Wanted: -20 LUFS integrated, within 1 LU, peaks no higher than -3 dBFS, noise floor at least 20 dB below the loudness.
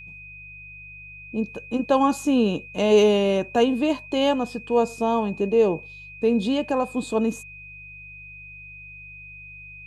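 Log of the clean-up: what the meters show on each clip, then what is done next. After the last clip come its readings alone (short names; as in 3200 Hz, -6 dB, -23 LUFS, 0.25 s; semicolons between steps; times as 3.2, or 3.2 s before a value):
hum 50 Hz; harmonics up to 150 Hz; hum level -47 dBFS; steady tone 2500 Hz; tone level -40 dBFS; loudness -22.5 LUFS; peak -7.5 dBFS; loudness target -20.0 LUFS
-> de-hum 50 Hz, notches 3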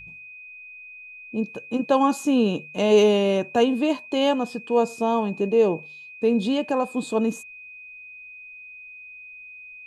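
hum none; steady tone 2500 Hz; tone level -40 dBFS
-> notch 2500 Hz, Q 30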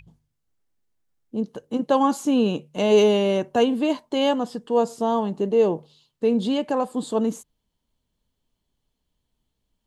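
steady tone none; loudness -22.5 LUFS; peak -7.0 dBFS; loudness target -20.0 LUFS
-> gain +2.5 dB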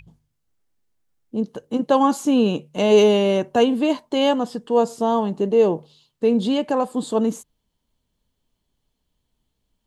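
loudness -20.0 LUFS; peak -4.5 dBFS; noise floor -76 dBFS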